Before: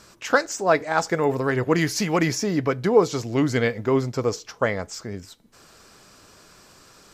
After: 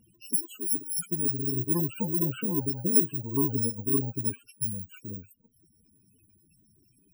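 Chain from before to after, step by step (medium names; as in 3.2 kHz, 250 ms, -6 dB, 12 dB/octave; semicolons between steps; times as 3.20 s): bit-reversed sample order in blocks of 64 samples; loudest bins only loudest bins 16; comb of notches 610 Hz; trim -3 dB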